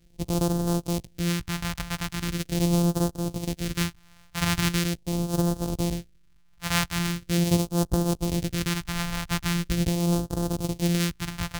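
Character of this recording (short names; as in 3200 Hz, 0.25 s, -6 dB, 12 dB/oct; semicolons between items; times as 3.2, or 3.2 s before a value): a buzz of ramps at a fixed pitch in blocks of 256 samples; phasing stages 2, 0.41 Hz, lowest notch 380–2100 Hz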